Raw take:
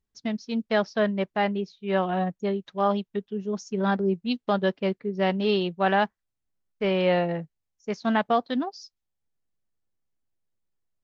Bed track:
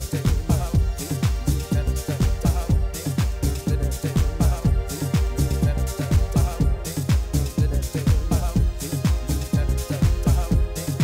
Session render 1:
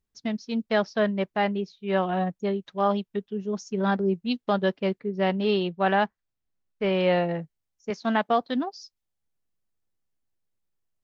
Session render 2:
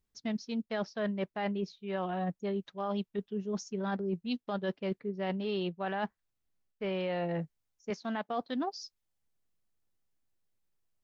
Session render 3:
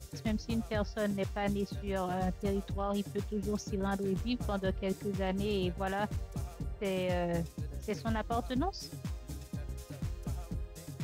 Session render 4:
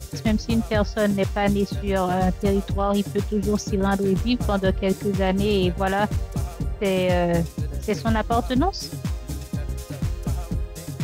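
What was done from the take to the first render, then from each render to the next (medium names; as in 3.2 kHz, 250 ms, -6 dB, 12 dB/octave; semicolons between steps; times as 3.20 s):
5.03–6.93 s: distance through air 67 m; 7.90–8.41 s: high-pass 180 Hz
peak limiter -14.5 dBFS, peak gain reduction 5 dB; reverse; compression, threshold -31 dBFS, peak gain reduction 11.5 dB; reverse
add bed track -19 dB
trim +12 dB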